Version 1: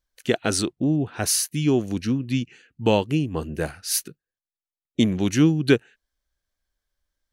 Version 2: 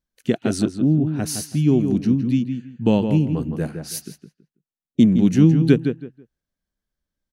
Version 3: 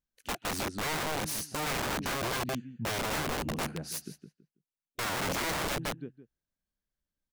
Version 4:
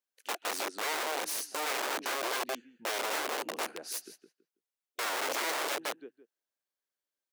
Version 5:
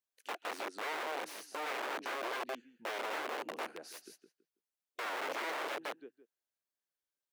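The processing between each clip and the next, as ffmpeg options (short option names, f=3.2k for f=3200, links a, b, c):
-filter_complex "[0:a]equalizer=f=190:w=0.75:g=14.5,asplit=2[a][b];[b]adelay=163,lowpass=f=2.5k:p=1,volume=-7dB,asplit=2[c][d];[d]adelay=163,lowpass=f=2.5k:p=1,volume=0.23,asplit=2[e][f];[f]adelay=163,lowpass=f=2.5k:p=1,volume=0.23[g];[c][e][g]amix=inputs=3:normalize=0[h];[a][h]amix=inputs=2:normalize=0,volume=-6.5dB"
-af "alimiter=limit=-9.5dB:level=0:latency=1:release=34,aeval=exprs='(mod(10.6*val(0)+1,2)-1)/10.6':c=same,volume=-7dB"
-af "highpass=f=360:w=0.5412,highpass=f=360:w=1.3066"
-filter_complex "[0:a]acrossover=split=3400[a][b];[b]acompressor=threshold=-46dB:ratio=4:attack=1:release=60[c];[a][c]amix=inputs=2:normalize=0,volume=-4dB"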